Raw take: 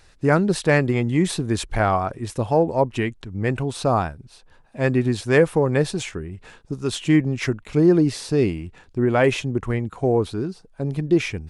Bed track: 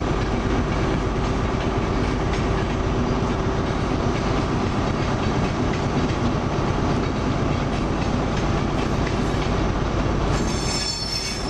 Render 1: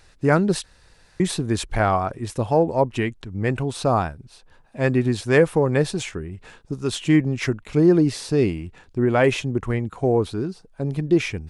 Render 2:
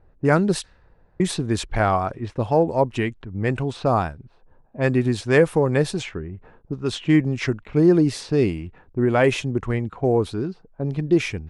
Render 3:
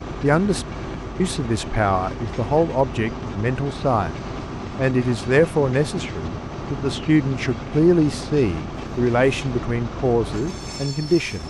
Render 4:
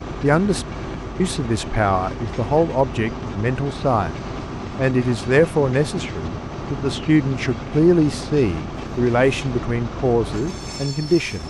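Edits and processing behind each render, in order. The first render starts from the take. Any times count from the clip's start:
0.64–1.20 s: room tone
level-controlled noise filter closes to 670 Hz, open at -17.5 dBFS
add bed track -8.5 dB
trim +1 dB

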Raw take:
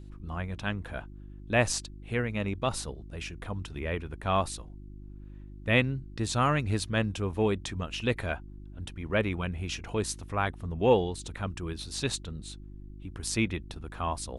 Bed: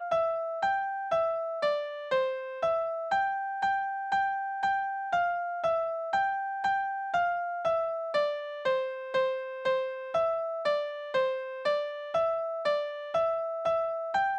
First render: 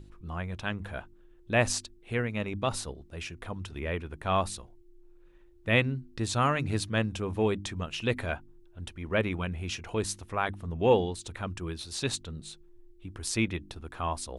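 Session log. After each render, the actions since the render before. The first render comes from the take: de-hum 50 Hz, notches 6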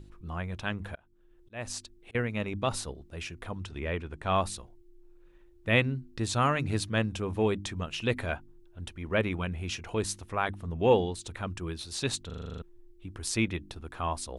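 0.79–2.15 s: slow attack 540 ms; 3.65–4.30 s: low-pass 9.2 kHz 24 dB/octave; 12.26 s: stutter in place 0.04 s, 9 plays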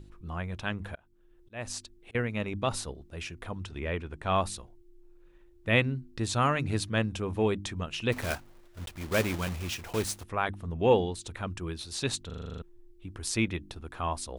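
8.12–10.24 s: block-companded coder 3-bit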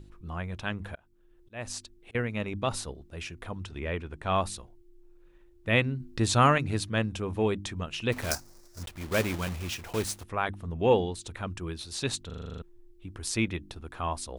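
6.00–6.58 s: gain +5 dB; 8.31–8.83 s: resonant high shelf 4.1 kHz +9.5 dB, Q 3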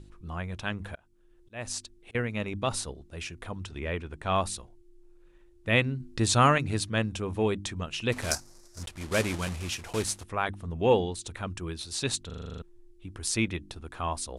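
low-pass 11 kHz 24 dB/octave; treble shelf 5.5 kHz +5.5 dB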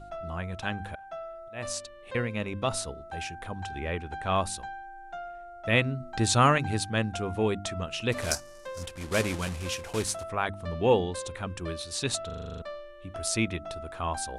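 add bed -12 dB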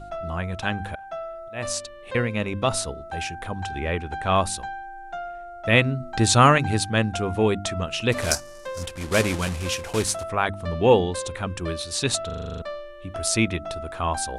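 trim +6 dB

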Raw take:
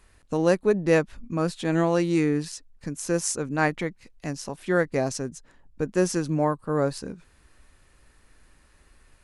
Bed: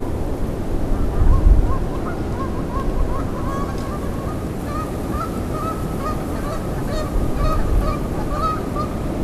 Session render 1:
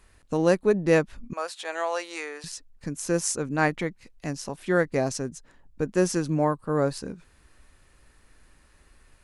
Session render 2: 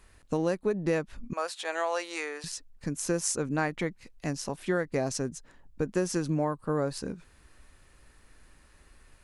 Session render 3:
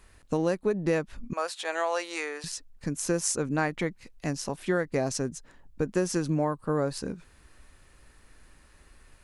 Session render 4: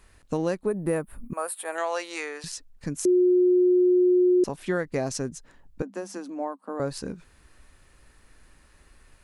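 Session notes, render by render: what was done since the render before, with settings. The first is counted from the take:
1.33–2.44 s: high-pass 590 Hz 24 dB/octave
compression 6:1, threshold -24 dBFS, peak gain reduction 9.5 dB
trim +1.5 dB
0.66–1.78 s: FFT filter 1.2 kHz 0 dB, 6.3 kHz -16 dB, 9.3 kHz +14 dB; 3.05–4.44 s: bleep 361 Hz -16 dBFS; 5.82–6.80 s: rippled Chebyshev high-pass 190 Hz, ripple 9 dB

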